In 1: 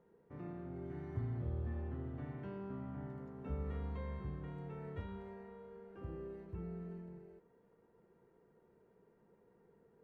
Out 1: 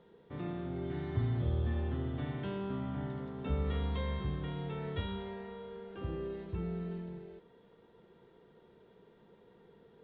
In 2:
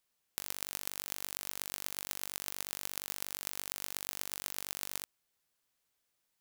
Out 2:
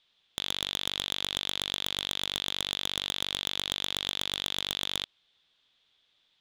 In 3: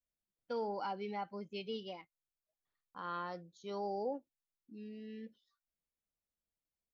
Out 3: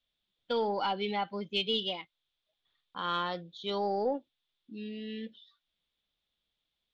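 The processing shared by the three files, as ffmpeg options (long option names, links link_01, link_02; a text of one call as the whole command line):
ffmpeg -i in.wav -af "lowpass=frequency=3500:width_type=q:width=7.5,aeval=exprs='0.188*(cos(1*acos(clip(val(0)/0.188,-1,1)))-cos(1*PI/2))+0.075*(cos(2*acos(clip(val(0)/0.188,-1,1)))-cos(2*PI/2))+0.0668*(cos(5*acos(clip(val(0)/0.188,-1,1)))-cos(5*PI/2))+0.0119*(cos(7*acos(clip(val(0)/0.188,-1,1)))-cos(7*PI/2))':channel_layout=same" out.wav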